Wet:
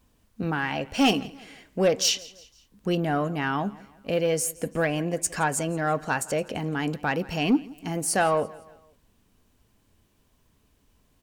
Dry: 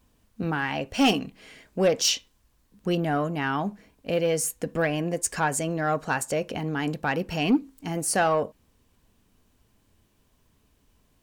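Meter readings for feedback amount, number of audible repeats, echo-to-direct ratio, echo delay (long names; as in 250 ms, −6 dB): 44%, 2, −20.5 dB, 169 ms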